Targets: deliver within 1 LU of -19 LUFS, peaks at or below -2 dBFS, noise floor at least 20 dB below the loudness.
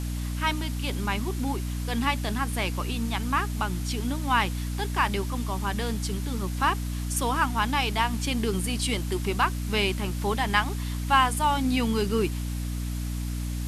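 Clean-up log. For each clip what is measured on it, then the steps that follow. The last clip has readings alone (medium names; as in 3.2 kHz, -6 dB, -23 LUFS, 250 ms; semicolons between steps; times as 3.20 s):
hum 60 Hz; highest harmonic 300 Hz; hum level -28 dBFS; noise floor -31 dBFS; noise floor target -47 dBFS; loudness -27.0 LUFS; peak level -7.0 dBFS; loudness target -19.0 LUFS
-> hum notches 60/120/180/240/300 Hz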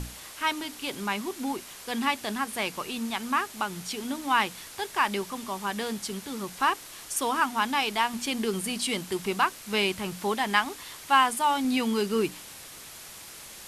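hum not found; noise floor -45 dBFS; noise floor target -48 dBFS
-> noise reduction 6 dB, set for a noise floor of -45 dBFS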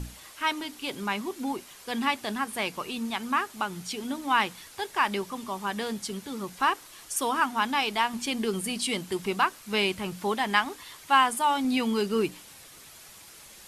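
noise floor -50 dBFS; loudness -28.5 LUFS; peak level -7.5 dBFS; loudness target -19.0 LUFS
-> trim +9.5 dB; peak limiter -2 dBFS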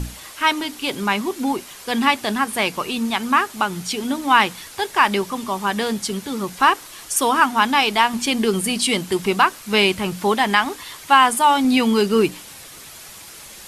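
loudness -19.0 LUFS; peak level -2.0 dBFS; noise floor -40 dBFS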